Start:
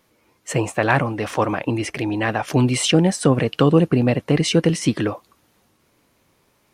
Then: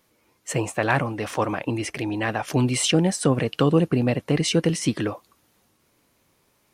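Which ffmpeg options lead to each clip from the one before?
-af "highshelf=f=5k:g=4.5,volume=-4dB"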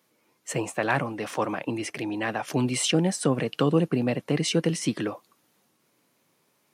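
-af "highpass=f=130:w=0.5412,highpass=f=130:w=1.3066,volume=-3dB"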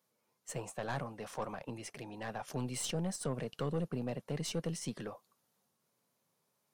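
-af "equalizer=f=310:w=3.4:g=-11.5,aeval=exprs='(tanh(10*val(0)+0.4)-tanh(0.4))/10':c=same,equalizer=f=2.3k:w=1.1:g=-6.5,volume=-8dB"

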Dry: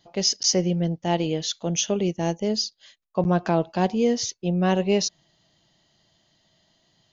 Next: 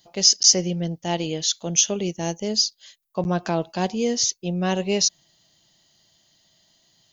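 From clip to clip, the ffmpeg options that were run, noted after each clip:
-af "aemphasis=mode=production:type=75fm,volume=-1.5dB"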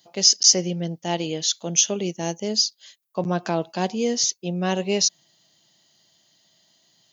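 -af "highpass=140"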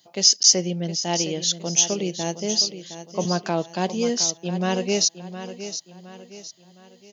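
-af "aecho=1:1:714|1428|2142|2856:0.266|0.109|0.0447|0.0183"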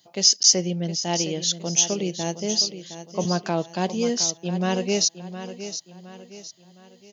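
-af "lowshelf=f=86:g=7.5,volume=-1dB"

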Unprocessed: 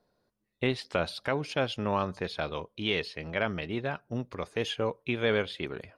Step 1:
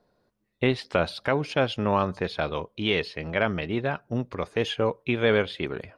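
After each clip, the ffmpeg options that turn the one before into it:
-af "highshelf=f=4.6k:g=-7.5,volume=5.5dB"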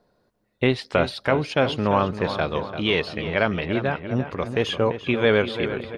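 -filter_complex "[0:a]asplit=2[a][b];[b]adelay=342,lowpass=f=3k:p=1,volume=-10dB,asplit=2[c][d];[d]adelay=342,lowpass=f=3k:p=1,volume=0.53,asplit=2[e][f];[f]adelay=342,lowpass=f=3k:p=1,volume=0.53,asplit=2[g][h];[h]adelay=342,lowpass=f=3k:p=1,volume=0.53,asplit=2[i][j];[j]adelay=342,lowpass=f=3k:p=1,volume=0.53,asplit=2[k][l];[l]adelay=342,lowpass=f=3k:p=1,volume=0.53[m];[a][c][e][g][i][k][m]amix=inputs=7:normalize=0,volume=3dB"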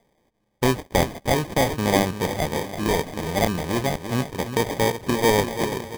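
-af "acrusher=samples=32:mix=1:aa=0.000001"

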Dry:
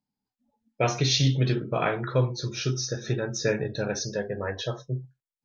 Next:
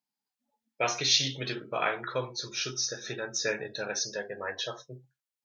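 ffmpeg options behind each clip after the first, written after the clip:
-af "highpass=f=1.1k:p=1,volume=1.5dB"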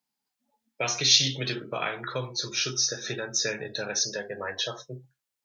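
-filter_complex "[0:a]acrossover=split=210|3000[a][b][c];[b]acompressor=threshold=-38dB:ratio=2.5[d];[a][d][c]amix=inputs=3:normalize=0,volume=5.5dB"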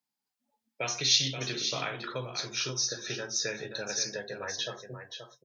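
-af "aecho=1:1:529:0.376,volume=-4.5dB"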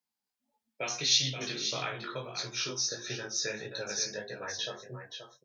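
-af "flanger=delay=16:depth=4.8:speed=1.6,volume=1.5dB"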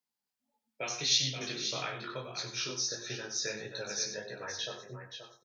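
-af "aecho=1:1:94:0.282,volume=-2dB"

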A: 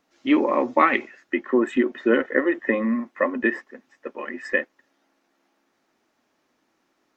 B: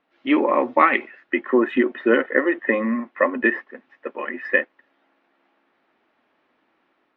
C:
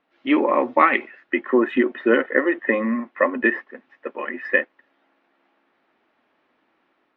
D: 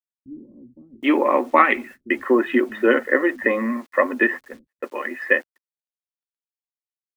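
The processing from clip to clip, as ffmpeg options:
-af "lowpass=f=3.3k:w=0.5412,lowpass=f=3.3k:w=1.3066,lowshelf=f=250:g=-8,dynaudnorm=f=130:g=5:m=4dB,volume=1dB"
-af anull
-filter_complex "[0:a]acrusher=bits=8:mix=0:aa=0.000001,agate=range=-33dB:threshold=-41dB:ratio=16:detection=peak,acrossover=split=170[a][b];[b]adelay=770[c];[a][c]amix=inputs=2:normalize=0,volume=1dB"

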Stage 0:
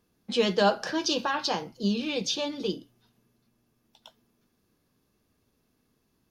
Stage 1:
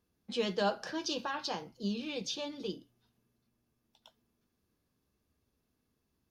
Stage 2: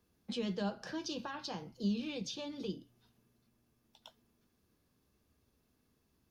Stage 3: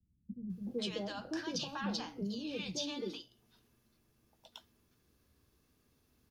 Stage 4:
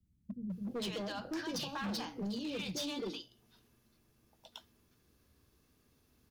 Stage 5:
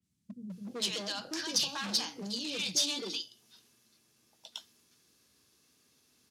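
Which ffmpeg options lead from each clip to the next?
-af "equalizer=f=69:w=2.3:g=8.5,volume=-8.5dB"
-filter_complex "[0:a]acrossover=split=230[a][b];[b]acompressor=threshold=-49dB:ratio=2.5[c];[a][c]amix=inputs=2:normalize=0,volume=4dB"
-filter_complex "[0:a]alimiter=level_in=5.5dB:limit=-24dB:level=0:latency=1:release=362,volume=-5.5dB,acrossover=split=210|720[a][b][c];[b]adelay=380[d];[c]adelay=500[e];[a][d][e]amix=inputs=3:normalize=0,volume=4dB"
-af "asoftclip=type=hard:threshold=-36.5dB,volume=2dB"
-af "highpass=140,lowpass=7.2k,crystalizer=i=5.5:c=0,adynamicequalizer=threshold=0.00708:dfrequency=3600:dqfactor=0.7:tfrequency=3600:tqfactor=0.7:attack=5:release=100:ratio=0.375:range=2:mode=boostabove:tftype=highshelf,volume=-2dB"

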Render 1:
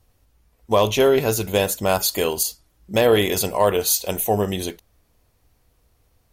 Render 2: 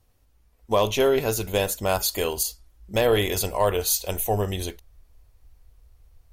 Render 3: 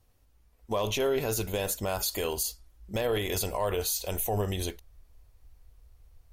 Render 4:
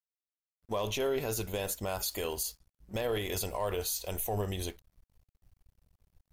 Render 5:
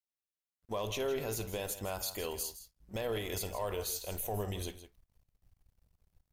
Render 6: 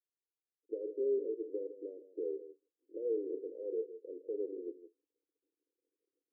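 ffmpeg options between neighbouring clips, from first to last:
-af "asubboost=boost=8:cutoff=64,volume=-3.5dB"
-af "alimiter=limit=-17.5dB:level=0:latency=1:release=37,volume=-2dB"
-af "aeval=exprs='sgn(val(0))*max(abs(val(0))-0.00211,0)':c=same,volume=-3.5dB"
-af "aecho=1:1:54|161:0.126|0.224,volume=-3.5dB"
-af "asuperpass=centerf=380:order=12:qfactor=1.7,volume=3dB"

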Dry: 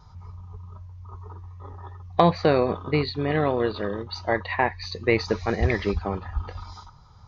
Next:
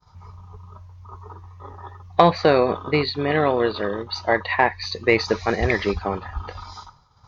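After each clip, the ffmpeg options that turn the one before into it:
-af "agate=range=-33dB:threshold=-44dB:ratio=3:detection=peak,lowshelf=f=250:g=-8.5,acontrast=20,volume=1dB"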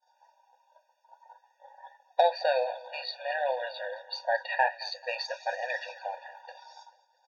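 -af "aecho=1:1:219|438|657|876:0.1|0.051|0.026|0.0133,flanger=delay=4.9:depth=8.7:regen=-60:speed=0.55:shape=triangular,afftfilt=real='re*eq(mod(floor(b*sr/1024/480),2),1)':imag='im*eq(mod(floor(b*sr/1024/480),2),1)':win_size=1024:overlap=0.75,volume=-2dB"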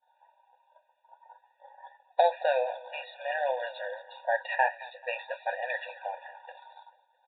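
-af "aresample=8000,aresample=44100"

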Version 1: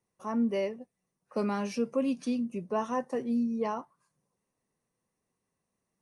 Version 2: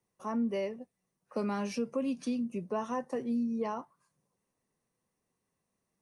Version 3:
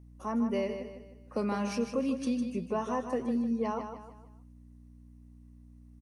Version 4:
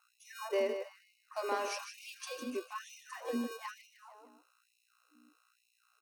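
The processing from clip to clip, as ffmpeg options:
-filter_complex "[0:a]acrossover=split=140[a][b];[b]acompressor=threshold=-32dB:ratio=2[c];[a][c]amix=inputs=2:normalize=0"
-af "aeval=exprs='val(0)+0.00224*(sin(2*PI*60*n/s)+sin(2*PI*2*60*n/s)/2+sin(2*PI*3*60*n/s)/3+sin(2*PI*4*60*n/s)/4+sin(2*PI*5*60*n/s)/5)':c=same,aecho=1:1:154|308|462|616:0.398|0.155|0.0606|0.0236,volume=1.5dB"
-filter_complex "[0:a]acrossover=split=190|1200|4300[a][b][c][d];[a]acrusher=samples=33:mix=1:aa=0.000001[e];[e][b][c][d]amix=inputs=4:normalize=0,afftfilt=real='re*gte(b*sr/1024,230*pow(2100/230,0.5+0.5*sin(2*PI*1.1*pts/sr)))':imag='im*gte(b*sr/1024,230*pow(2100/230,0.5+0.5*sin(2*PI*1.1*pts/sr)))':win_size=1024:overlap=0.75,volume=1dB"

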